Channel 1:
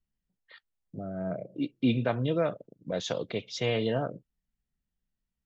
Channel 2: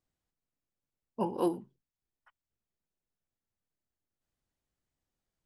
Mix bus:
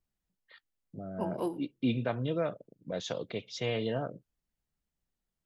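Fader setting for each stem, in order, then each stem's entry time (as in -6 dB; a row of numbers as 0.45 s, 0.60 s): -4.0 dB, -4.5 dB; 0.00 s, 0.00 s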